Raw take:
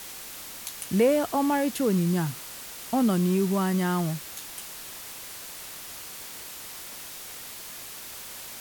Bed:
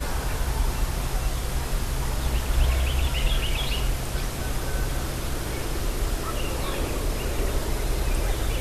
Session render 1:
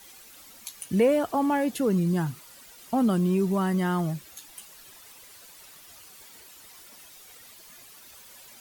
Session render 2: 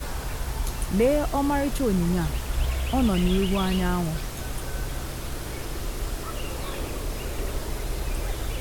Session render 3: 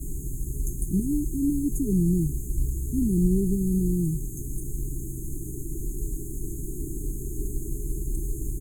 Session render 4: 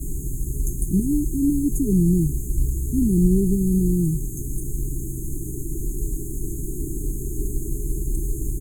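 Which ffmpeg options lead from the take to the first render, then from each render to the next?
-af "afftdn=nr=12:nf=-41"
-filter_complex "[1:a]volume=-4dB[a];[0:a][a]amix=inputs=2:normalize=0"
-af "afftfilt=real='re*(1-between(b*sr/4096,420,6300))':imag='im*(1-between(b*sr/4096,420,6300))':win_size=4096:overlap=0.75,aecho=1:1:6.4:0.36"
-af "volume=4.5dB"

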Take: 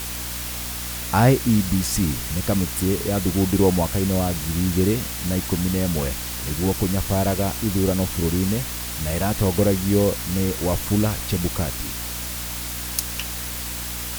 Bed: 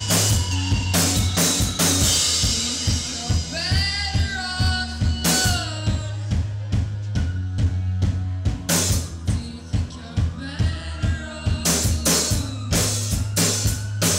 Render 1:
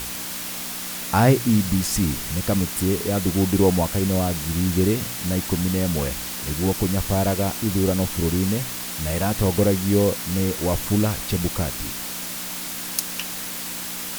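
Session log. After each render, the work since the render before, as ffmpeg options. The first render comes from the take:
-af "bandreject=f=60:t=h:w=4,bandreject=f=120:t=h:w=4"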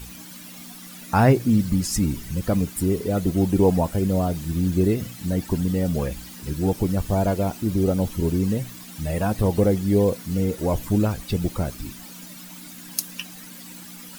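-af "afftdn=nr=14:nf=-31"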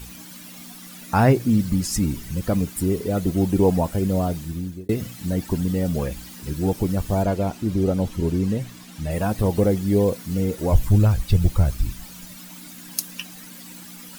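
-filter_complex "[0:a]asettb=1/sr,asplit=3[a][b][c];[a]atrim=end=7.234[d];[b]atrim=start=7.23:end=9.11,asetpts=PTS-STARTPTS,afade=t=in:d=0.004:c=qsin,afade=t=out:st=1.876:d=0.004:c=qsin,highshelf=f=9.4k:g=-10[e];[c]atrim=start=9.106[f];[d][e]acrossfade=d=0.004:c1=hsin:c2=qsin[g];[g][f]acrossfade=d=0.004:c1=qsin:c2=hsin,asplit=3[h][i][j];[h]afade=t=out:st=10.71:d=0.02[k];[i]asubboost=boost=6:cutoff=100,afade=t=in:st=10.71:d=0.02,afade=t=out:st=12.35:d=0.02[l];[j]afade=t=in:st=12.35:d=0.02[m];[k][l][m]amix=inputs=3:normalize=0,asplit=2[n][o];[n]atrim=end=4.89,asetpts=PTS-STARTPTS,afade=t=out:st=4.31:d=0.58[p];[o]atrim=start=4.89,asetpts=PTS-STARTPTS,afade=t=in:d=0.004:c=hsin[q];[p][q]concat=n=2:v=0:a=1"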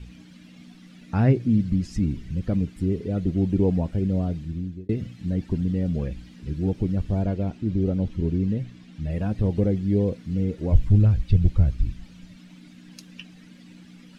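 -af "lowpass=2.5k,equalizer=f=980:w=0.68:g=-14"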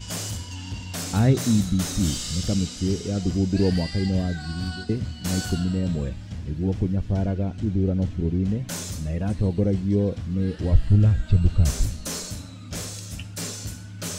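-filter_complex "[1:a]volume=-12.5dB[a];[0:a][a]amix=inputs=2:normalize=0"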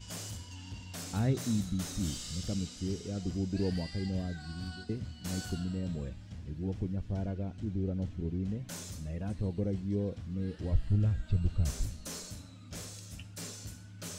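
-af "volume=-11dB"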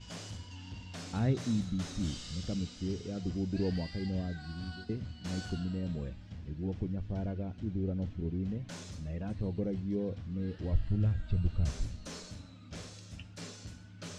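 -af "lowpass=5k,bandreject=f=50:t=h:w=6,bandreject=f=100:t=h:w=6"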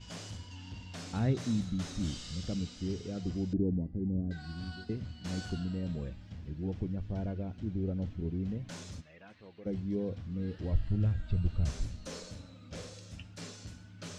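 -filter_complex "[0:a]asettb=1/sr,asplit=3[a][b][c];[a]atrim=end=3.534[d];[b]atrim=start=3.53:end=4.31,asetpts=PTS-STARTPTS,afade=t=in:d=0.004:c=qsin,afade=t=out:st=0.776:d=0.004:c=qsin,lowpass=f=320:t=q:w=1.5[e];[c]atrim=start=4.306[f];[d][e]acrossfade=d=0.004:c1=hsin:c2=qsin[g];[g][f]acrossfade=d=0.004:c1=qsin:c2=hsin,asplit=3[h][i][j];[h]afade=t=out:st=9:d=0.02[k];[i]bandpass=f=2.1k:t=q:w=0.94,afade=t=in:st=9:d=0.02,afade=t=out:st=9.65:d=0.02[l];[j]afade=t=in:st=9.65:d=0.02[m];[k][l][m]amix=inputs=3:normalize=0,asettb=1/sr,asplit=3[n][o][p];[n]atrim=end=12.074[q];[o]atrim=start=12.07:end=13.12,asetpts=PTS-STARTPTS,afade=t=in:d=0.004:c=qsin,afade=t=out:st=1.046:d=0.004:c=qsin,equalizer=f=510:t=o:w=0.3:g=9[r];[p]atrim=start=13.116[s];[q][r]acrossfade=d=0.004:c1=hsin:c2=qsin[t];[t][s]acrossfade=d=0.004:c1=qsin:c2=hsin"

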